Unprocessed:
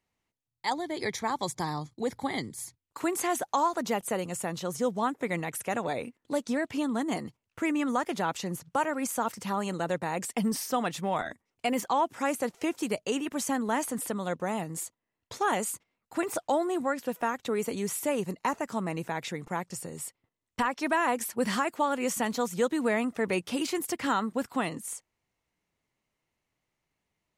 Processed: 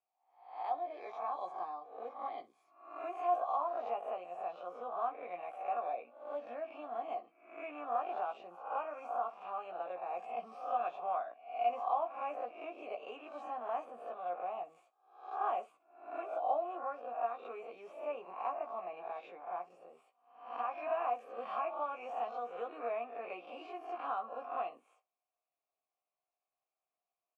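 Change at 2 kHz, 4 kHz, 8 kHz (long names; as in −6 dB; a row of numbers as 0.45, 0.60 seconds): −17.0 dB, below −20 dB, below −40 dB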